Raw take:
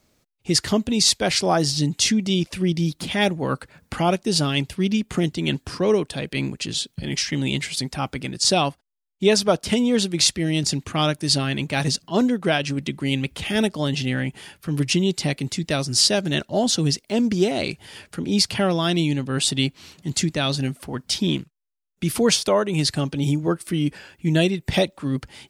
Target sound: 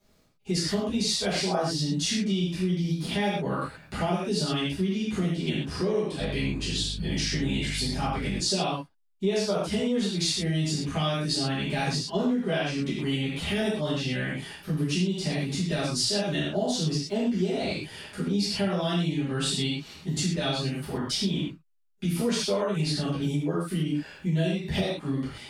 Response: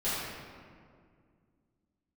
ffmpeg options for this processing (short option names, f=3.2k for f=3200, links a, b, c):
-filter_complex "[1:a]atrim=start_sample=2205,afade=t=out:st=0.19:d=0.01,atrim=end_sample=8820[a];[0:a][a]afir=irnorm=-1:irlink=0,acompressor=threshold=-19dB:ratio=3,asettb=1/sr,asplit=3[b][c][d];[b]atrim=end=6.204[e];[c]atrim=start=6.2:end=8.41,asetpts=PTS-STARTPTS,afade=t=in:d=0.004:c=qsin,afade=t=out:st=2.206:d=0.004:c=qsin,aeval=exprs='val(0)+0.0447*(sin(2*PI*50*n/s)+sin(2*PI*2*50*n/s)/2+sin(2*PI*3*50*n/s)/3+sin(2*PI*4*50*n/s)/4+sin(2*PI*5*50*n/s)/5)':c=same[f];[d]atrim=start=8.406[g];[e][f]acrossfade=d=0.004:c1=hsin:c2=qsin[h];[h][g]acrossfade=d=0.004:c1=qsin:c2=hsin,volume=-7dB"